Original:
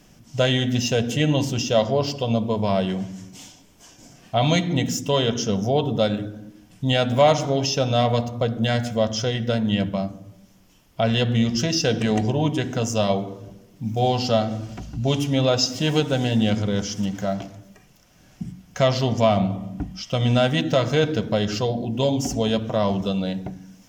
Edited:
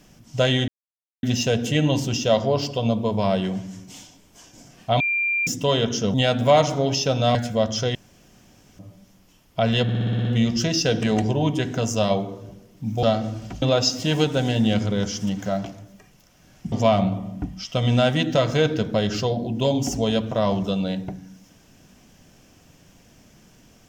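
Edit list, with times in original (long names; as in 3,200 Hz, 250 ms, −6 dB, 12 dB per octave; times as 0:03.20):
0:00.68: splice in silence 0.55 s
0:04.45–0:04.92: beep over 2,380 Hz −19.5 dBFS
0:05.59–0:06.85: remove
0:08.06–0:08.76: remove
0:09.36–0:10.20: fill with room tone
0:11.24: stutter 0.06 s, 8 plays
0:14.02–0:14.30: remove
0:14.89–0:15.38: remove
0:18.48–0:19.10: remove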